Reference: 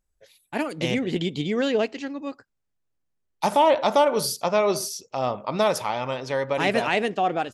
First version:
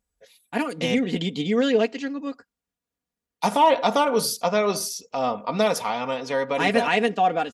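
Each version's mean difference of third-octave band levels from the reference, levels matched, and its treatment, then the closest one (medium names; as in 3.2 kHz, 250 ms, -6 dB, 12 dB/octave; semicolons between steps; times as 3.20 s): 1.5 dB: high-pass 56 Hz; comb 4.2 ms, depth 62%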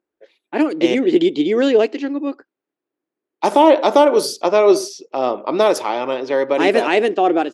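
4.5 dB: level-controlled noise filter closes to 2.4 kHz, open at -17 dBFS; resonant high-pass 330 Hz, resonance Q 4; trim +4 dB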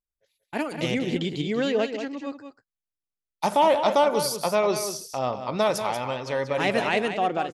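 3.0 dB: gate -48 dBFS, range -16 dB; on a send: delay 187 ms -9 dB; on the sum: trim -1.5 dB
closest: first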